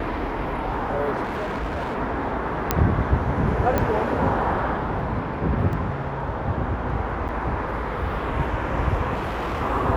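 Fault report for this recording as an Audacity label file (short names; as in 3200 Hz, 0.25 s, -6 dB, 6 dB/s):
1.230000	1.960000	clipped -24 dBFS
2.710000	2.710000	pop -3 dBFS
3.780000	3.780000	pop -9 dBFS
5.730000	5.730000	gap 2.1 ms
7.280000	7.290000	gap 8.7 ms
9.140000	9.620000	clipped -23 dBFS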